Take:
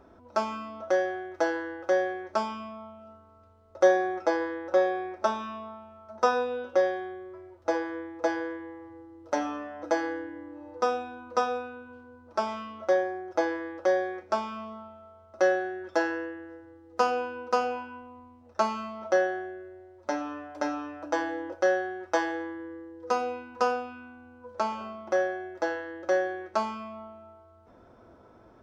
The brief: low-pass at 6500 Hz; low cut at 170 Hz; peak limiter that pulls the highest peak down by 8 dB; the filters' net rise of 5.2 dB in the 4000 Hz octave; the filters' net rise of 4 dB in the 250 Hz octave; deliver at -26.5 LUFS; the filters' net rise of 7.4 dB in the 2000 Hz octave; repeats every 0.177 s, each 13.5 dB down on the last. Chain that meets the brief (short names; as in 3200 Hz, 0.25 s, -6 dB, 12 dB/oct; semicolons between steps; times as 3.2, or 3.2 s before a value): HPF 170 Hz; LPF 6500 Hz; bell 250 Hz +6.5 dB; bell 2000 Hz +9 dB; bell 4000 Hz +4.5 dB; limiter -15 dBFS; feedback echo 0.177 s, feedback 21%, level -13.5 dB; gain +2 dB